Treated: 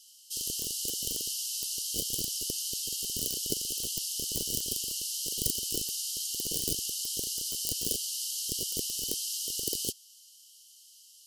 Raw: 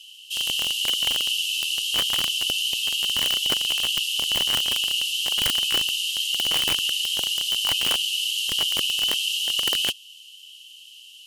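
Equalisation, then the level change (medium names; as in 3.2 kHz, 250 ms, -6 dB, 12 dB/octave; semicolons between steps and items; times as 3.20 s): elliptic band-stop 440–4800 Hz, stop band 80 dB; 0.0 dB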